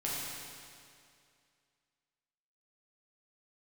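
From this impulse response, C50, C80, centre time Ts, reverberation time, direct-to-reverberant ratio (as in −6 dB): −2.5 dB, −1.0 dB, 147 ms, 2.3 s, −7.0 dB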